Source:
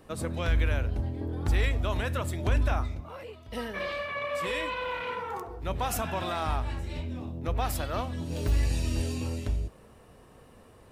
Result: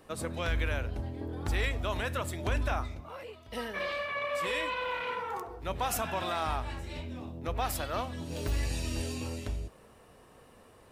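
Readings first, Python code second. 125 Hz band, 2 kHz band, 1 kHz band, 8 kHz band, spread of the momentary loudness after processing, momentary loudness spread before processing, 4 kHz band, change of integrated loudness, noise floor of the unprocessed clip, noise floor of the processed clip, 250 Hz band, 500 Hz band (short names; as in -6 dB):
-6.0 dB, 0.0 dB, -0.5 dB, 0.0 dB, 9 LU, 9 LU, 0.0 dB, -3.0 dB, -54 dBFS, -57 dBFS, -4.0 dB, -1.5 dB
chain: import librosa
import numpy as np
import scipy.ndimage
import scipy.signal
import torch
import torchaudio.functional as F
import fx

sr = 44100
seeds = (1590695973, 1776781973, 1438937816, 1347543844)

y = fx.low_shelf(x, sr, hz=300.0, db=-6.5)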